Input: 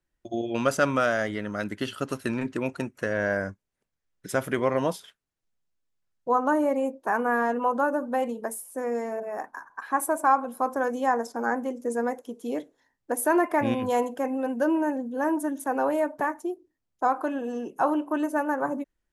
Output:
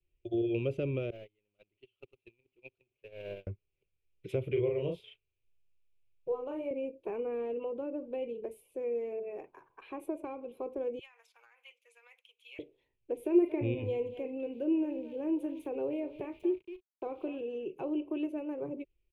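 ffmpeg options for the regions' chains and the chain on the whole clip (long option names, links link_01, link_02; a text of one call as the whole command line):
ffmpeg -i in.wav -filter_complex "[0:a]asettb=1/sr,asplit=3[link_01][link_02][link_03];[link_01]atrim=end=1.104[link_04];[link_02]atrim=start=1.1:end=3.47,asetpts=PTS-STARTPTS,afade=type=in:duration=0.004:curve=qsin,afade=type=out:start_time=2.366:duration=0.004:curve=qsin,aeval=exprs='val(0)+0.5*0.0355*sgn(val(0))':channel_layout=same,lowshelf=frequency=340:gain=-5.5,agate=range=-48dB:threshold=-24dB:ratio=16:release=100:detection=peak[link_05];[link_03]atrim=start=3.466[link_06];[link_04][link_05]acrossfade=duration=0.004:curve1=hsin:curve2=qsin[link_07];[link_07][link_06]acrossfade=duration=0.004:curve1=qsin:curve2=hsin,asettb=1/sr,asplit=3[link_08][link_09][link_10];[link_08]atrim=end=4.524[link_11];[link_09]atrim=start=4.52:end=6.71,asetpts=PTS-STARTPTS,afade=type=in:duration=0.004:curve=qsin,afade=type=out:start_time=2.186:duration=0.004:curve=qsin,equalizer=frequency=250:width_type=o:width=0.68:gain=-13,asplit=2[link_12][link_13];[link_13]adelay=35,volume=-3dB[link_14];[link_12][link_14]amix=inputs=2:normalize=0,atrim=end_sample=96579[link_15];[link_10]atrim=start=6.706[link_16];[link_11][link_15]acrossfade=duration=0.004:curve1=hsin:curve2=qsin[link_17];[link_17][link_16]acrossfade=duration=0.004:curve1=qsin:curve2=hsin,asettb=1/sr,asplit=3[link_18][link_19][link_20];[link_18]atrim=end=10.994[link_21];[link_19]atrim=start=10.99:end=12.59,asetpts=PTS-STARTPTS,afade=type=in:duration=0.004:curve=qsin,afade=type=out:start_time=1.596:duration=0.004:curve=qsin,highpass=frequency=1400:width=0.5412,highpass=frequency=1400:width=1.3066,acompressor=threshold=-39dB:ratio=10:attack=3.2:release=140:knee=1:detection=peak[link_22];[link_20]atrim=start=12.586[link_23];[link_21][link_22]acrossfade=duration=0.004:curve1=hsin:curve2=qsin[link_24];[link_24][link_23]acrossfade=duration=0.004:curve1=qsin:curve2=hsin,asettb=1/sr,asplit=3[link_25][link_26][link_27];[link_25]atrim=end=13.154[link_28];[link_26]atrim=start=13.15:end=17.41,asetpts=PTS-STARTPTS,afade=type=in:duration=0.004:curve=qsin,afade=type=out:start_time=4.256:duration=0.004:curve=qsin,aecho=1:1:228:0.168,atrim=end_sample=187866,aeval=exprs='val(0)*gte(abs(val(0)),0.00398)':channel_layout=same,asplit=2[link_29][link_30];[link_30]adelay=38,volume=-14dB[link_31];[link_29][link_31]amix=inputs=2:normalize=0,atrim=end_sample=187866[link_32];[link_27]atrim=start=17.406[link_33];[link_28][link_32]acrossfade=duration=0.004:curve1=hsin:curve2=qsin[link_34];[link_34][link_33]acrossfade=duration=0.004:curve1=qsin:curve2=hsin,firequalizer=gain_entry='entry(110,0);entry(240,-19);entry(370,1);entry(720,-17);entry(1100,-20);entry(1700,-27);entry(2400,3);entry(5200,-27);entry(7500,-30);entry(14000,-25)':delay=0.05:min_phase=1,acrossover=split=500[link_35][link_36];[link_36]acompressor=threshold=-47dB:ratio=6[link_37];[link_35][link_37]amix=inputs=2:normalize=0,adynamicequalizer=threshold=0.00251:dfrequency=980:dqfactor=1.1:tfrequency=980:tqfactor=1.1:attack=5:release=100:ratio=0.375:range=2:mode=cutabove:tftype=bell,volume=3.5dB" out.wav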